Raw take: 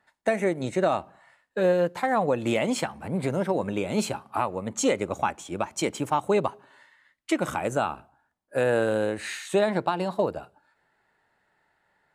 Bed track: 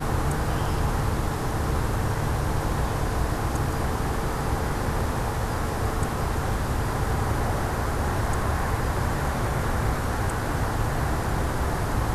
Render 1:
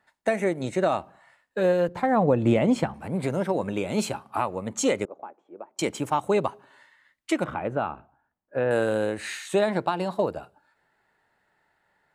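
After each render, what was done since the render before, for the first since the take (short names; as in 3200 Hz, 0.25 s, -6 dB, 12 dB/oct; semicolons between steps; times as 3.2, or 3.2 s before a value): 1.88–2.94 tilt -3 dB/oct; 5.05–5.79 ladder band-pass 510 Hz, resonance 30%; 7.44–8.71 air absorption 430 m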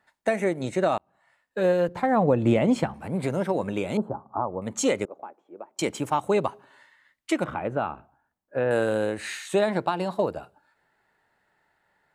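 0.98–1.66 fade in; 3.97–4.62 inverse Chebyshev low-pass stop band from 2200 Hz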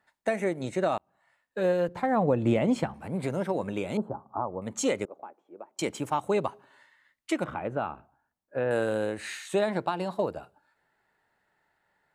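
gain -3.5 dB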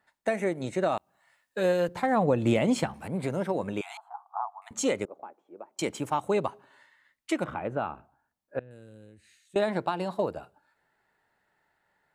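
0.97–3.08 high shelf 2600 Hz +9 dB; 3.81–4.71 brick-wall FIR high-pass 670 Hz; 8.59–9.56 passive tone stack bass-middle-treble 10-0-1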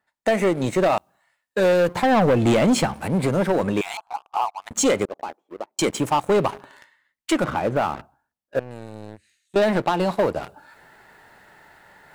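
sample leveller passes 3; reverse; upward compressor, threshold -28 dBFS; reverse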